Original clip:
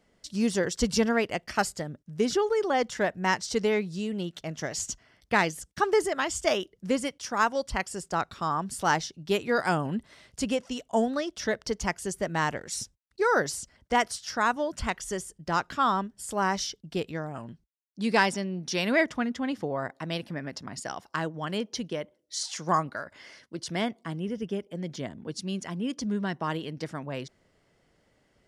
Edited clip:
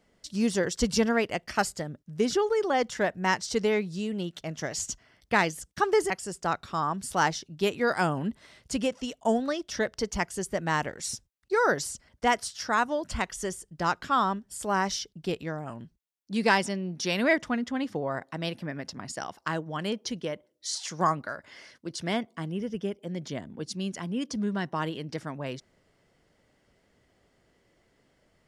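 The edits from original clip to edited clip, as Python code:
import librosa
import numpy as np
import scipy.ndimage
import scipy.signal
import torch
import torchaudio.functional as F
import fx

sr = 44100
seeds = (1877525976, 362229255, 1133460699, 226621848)

y = fx.edit(x, sr, fx.cut(start_s=6.1, length_s=1.68), tone=tone)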